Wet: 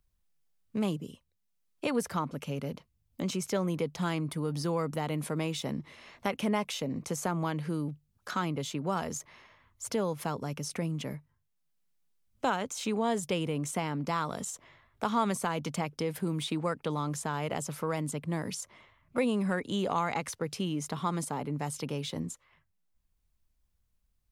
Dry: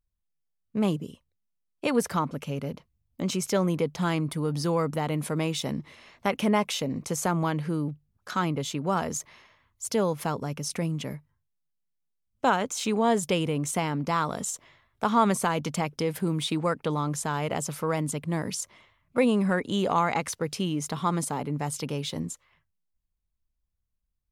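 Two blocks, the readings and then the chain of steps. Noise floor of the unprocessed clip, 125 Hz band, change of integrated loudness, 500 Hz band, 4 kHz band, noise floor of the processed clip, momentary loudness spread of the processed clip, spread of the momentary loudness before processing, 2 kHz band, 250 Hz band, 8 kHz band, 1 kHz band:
-78 dBFS, -4.5 dB, -5.0 dB, -5.0 dB, -5.0 dB, -76 dBFS, 8 LU, 10 LU, -5.0 dB, -5.0 dB, -5.5 dB, -5.5 dB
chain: three bands compressed up and down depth 40%; trim -5 dB

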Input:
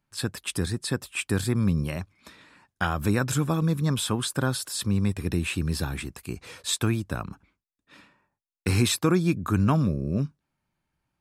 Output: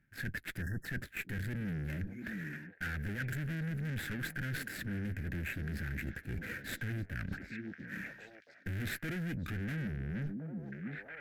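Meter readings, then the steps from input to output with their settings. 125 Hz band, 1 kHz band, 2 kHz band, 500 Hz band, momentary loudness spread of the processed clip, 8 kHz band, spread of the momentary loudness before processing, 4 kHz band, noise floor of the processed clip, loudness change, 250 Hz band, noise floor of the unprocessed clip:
-11.5 dB, -19.0 dB, -4.0 dB, -17.5 dB, 6 LU, -21.0 dB, 11 LU, -17.5 dB, -59 dBFS, -13.0 dB, -13.5 dB, -85 dBFS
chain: median filter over 15 samples; valve stage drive 37 dB, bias 0.65; FFT filter 230 Hz 0 dB, 630 Hz -10 dB, 1.1 kHz -20 dB, 1.6 kHz +10 dB, 4.2 kHz -6 dB; on a send: repeats whose band climbs or falls 686 ms, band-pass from 250 Hz, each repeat 1.4 oct, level -10 dB; on the sum: spectral selection erased 0.62–0.85 s, 1.9–5.1 kHz; peaking EQ 12 kHz +12 dB 0.28 oct; reverse; compression 4:1, threshold -53 dBFS, peak gain reduction 16.5 dB; reverse; trim +14.5 dB

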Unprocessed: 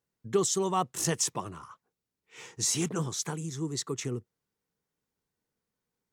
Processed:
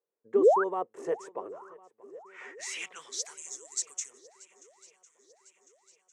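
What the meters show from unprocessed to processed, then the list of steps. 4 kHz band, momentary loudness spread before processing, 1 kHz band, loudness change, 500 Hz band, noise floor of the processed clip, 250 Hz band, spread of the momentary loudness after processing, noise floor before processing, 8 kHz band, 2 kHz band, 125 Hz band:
-7.5 dB, 14 LU, +1.5 dB, 0.0 dB, +5.5 dB, -82 dBFS, -4.5 dB, 24 LU, under -85 dBFS, -6.0 dB, +2.0 dB, under -25 dB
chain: high-pass 95 Hz; painted sound rise, 0.36–0.64 s, 210–1700 Hz -20 dBFS; graphic EQ 125/250/500/1000/2000/4000/8000 Hz -11/-3/+5/+5/+9/-4/+8 dB; band-pass sweep 450 Hz -> 6.8 kHz, 1.59–3.46 s; shuffle delay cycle 1052 ms, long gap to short 1.5:1, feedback 52%, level -22 dB

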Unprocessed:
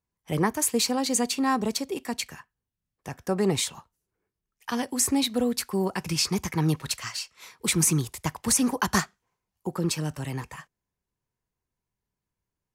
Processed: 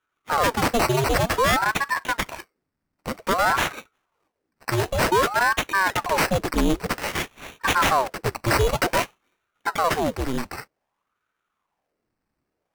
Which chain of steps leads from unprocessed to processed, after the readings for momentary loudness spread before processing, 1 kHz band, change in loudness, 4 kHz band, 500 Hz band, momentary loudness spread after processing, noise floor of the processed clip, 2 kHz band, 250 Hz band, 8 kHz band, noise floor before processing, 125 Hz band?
14 LU, +10.5 dB, +3.5 dB, +1.5 dB, +6.5 dB, 12 LU, -80 dBFS, +12.0 dB, -2.0 dB, -6.0 dB, under -85 dBFS, +1.0 dB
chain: sample-and-hold 13×; Chebyshev shaper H 5 -7 dB, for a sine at -10.5 dBFS; ring modulator with a swept carrier 760 Hz, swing 85%, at 0.53 Hz

